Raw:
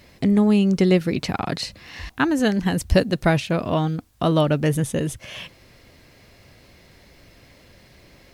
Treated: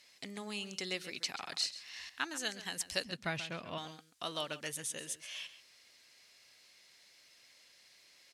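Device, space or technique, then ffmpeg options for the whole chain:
piezo pickup straight into a mixer: -filter_complex "[0:a]asettb=1/sr,asplit=3[link_01][link_02][link_03];[link_01]atrim=end=3.044[link_04];[link_02]atrim=start=3.04:end=3.78,asetpts=PTS-STARTPTS,afade=type=in:duration=0.004:curve=qsin,afade=type=out:start_time=0.736:duration=0.004:curve=qsin,bass=frequency=250:gain=12,treble=frequency=4000:gain=-10[link_05];[link_03]atrim=start=3.776[link_06];[link_04][link_05]acrossfade=duration=0.004:curve1=hsin:curve2=qsin[link_07];[link_07][link_06]acrossfade=duration=0.004:curve1=qsin:curve2=hsin,lowpass=7200,aderivative,asplit=2[link_08][link_09];[link_09]adelay=134.1,volume=-13dB,highshelf=frequency=4000:gain=-3.02[link_10];[link_08][link_10]amix=inputs=2:normalize=0"

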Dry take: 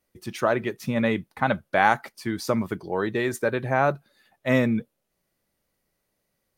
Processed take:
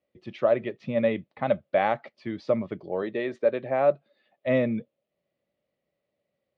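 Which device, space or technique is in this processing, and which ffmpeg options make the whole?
guitar cabinet: -filter_complex "[0:a]asettb=1/sr,asplit=3[link_01][link_02][link_03];[link_01]atrim=end=3.024[link_04];[link_02]atrim=start=3.02:end=4.47,asetpts=PTS-STARTPTS,afade=type=in:duration=0.004:curve=qsin,afade=type=out:start_time=1.446:duration=0.004:curve=qsin,highpass=180[link_05];[link_03]atrim=start=4.466[link_06];[link_04][link_05]acrossfade=duration=0.004:curve1=hsin:curve2=qsin[link_07];[link_07][link_06]acrossfade=duration=0.004:curve1=qsin:curve2=hsin,highpass=98,equalizer=frequency=580:width_type=q:width=4:gain=10,equalizer=frequency=940:width_type=q:width=4:gain=-6,equalizer=frequency=1500:width_type=q:width=4:gain=-9,lowpass=frequency=3600:width=0.5412,lowpass=frequency=3600:width=1.3066,volume=-4.5dB"

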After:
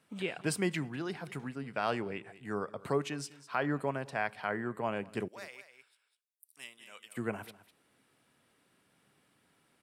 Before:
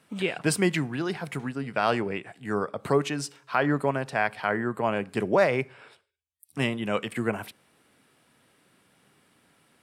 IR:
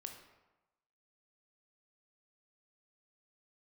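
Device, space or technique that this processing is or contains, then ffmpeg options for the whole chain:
ducked delay: -filter_complex "[0:a]asettb=1/sr,asplit=3[link_01][link_02][link_03];[link_01]atrim=end=5.284[link_04];[link_02]atrim=start=5.28:end=7.17,asetpts=PTS-STARTPTS,afade=type=in:duration=0.004:curve=qsin,afade=type=out:start_time=1.886:duration=0.004:curve=qsin,aderivative[link_05];[link_03]atrim=start=7.166[link_06];[link_04][link_05]acrossfade=duration=0.004:curve1=hsin:curve2=qsin[link_07];[link_07][link_06]acrossfade=duration=0.004:curve1=qsin:curve2=hsin,asplit=3[link_08][link_09][link_10];[link_09]adelay=201,volume=-7.5dB[link_11];[link_10]apad=whole_len=442336[link_12];[link_11][link_12]sidechaincompress=threshold=-40dB:ratio=10:attack=21:release=439[link_13];[link_08][link_13]amix=inputs=2:normalize=0,volume=-8dB"

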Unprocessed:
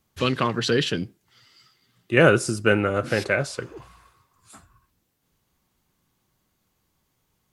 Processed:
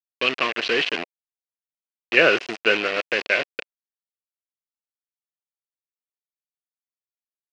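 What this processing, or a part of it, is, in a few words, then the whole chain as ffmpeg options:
hand-held game console: -af "acrusher=bits=3:mix=0:aa=0.000001,highpass=500,equalizer=frequency=570:width_type=q:width=4:gain=-3,equalizer=frequency=880:width_type=q:width=4:gain=-9,equalizer=frequency=1300:width_type=q:width=4:gain=-6,equalizer=frequency=2600:width_type=q:width=4:gain=7,equalizer=frequency=3600:width_type=q:width=4:gain=-5,lowpass=frequency=4100:width=0.5412,lowpass=frequency=4100:width=1.3066,volume=3.5dB"

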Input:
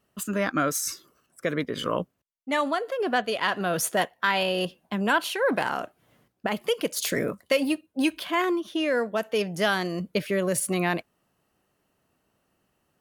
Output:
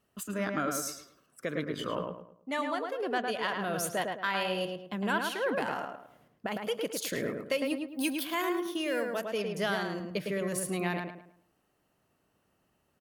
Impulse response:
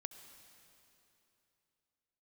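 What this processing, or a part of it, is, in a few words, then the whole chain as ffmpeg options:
parallel compression: -filter_complex "[0:a]asettb=1/sr,asplit=3[link_01][link_02][link_03];[link_01]atrim=end=7.884[link_04];[link_02]atrim=start=7.88:end=9.22,asetpts=PTS-STARTPTS,afade=type=in:duration=0.004:curve=qsin,afade=type=out:start_time=1.336:duration=0.004:curve=qsin,aemphasis=mode=production:type=50fm[link_05];[link_03]atrim=start=9.216[link_06];[link_04][link_05]acrossfade=duration=0.004:curve1=hsin:curve2=qsin[link_07];[link_07][link_06]acrossfade=duration=0.004:curve1=qsin:curve2=hsin,asplit=2[link_08][link_09];[link_09]acompressor=threshold=-43dB:ratio=6,volume=-1dB[link_10];[link_08][link_10]amix=inputs=2:normalize=0,asplit=2[link_11][link_12];[link_12]adelay=107,lowpass=frequency=2400:poles=1,volume=-3.5dB,asplit=2[link_13][link_14];[link_14]adelay=107,lowpass=frequency=2400:poles=1,volume=0.36,asplit=2[link_15][link_16];[link_16]adelay=107,lowpass=frequency=2400:poles=1,volume=0.36,asplit=2[link_17][link_18];[link_18]adelay=107,lowpass=frequency=2400:poles=1,volume=0.36,asplit=2[link_19][link_20];[link_20]adelay=107,lowpass=frequency=2400:poles=1,volume=0.36[link_21];[link_11][link_13][link_15][link_17][link_19][link_21]amix=inputs=6:normalize=0,volume=-8.5dB"

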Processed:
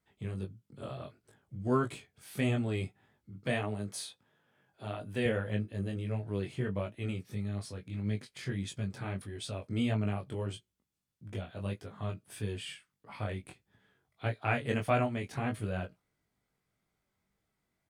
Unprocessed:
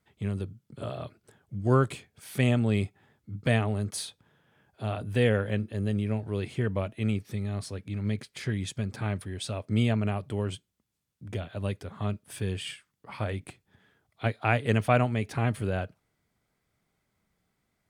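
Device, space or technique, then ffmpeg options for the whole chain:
double-tracked vocal: -filter_complex "[0:a]asplit=2[link_01][link_02];[link_02]adelay=16,volume=-11.5dB[link_03];[link_01][link_03]amix=inputs=2:normalize=0,flanger=delay=19:depth=3.2:speed=1.6,asettb=1/sr,asplit=3[link_04][link_05][link_06];[link_04]atrim=end=3.314[link_07];[link_05]atrim=start=3.31:end=5.26,asetpts=PTS-STARTPTS,afade=type=in:duration=0.004:curve=qsin,afade=type=out:start_time=1.946:duration=0.004:curve=qsin,highpass=frequency=170:poles=1[link_08];[link_06]atrim=start=5.256[link_09];[link_07][link_08]acrossfade=duration=0.004:curve1=hsin:curve2=qsin[link_10];[link_10][link_09]acrossfade=duration=0.004:curve1=qsin:curve2=hsin,volume=-2.5dB"

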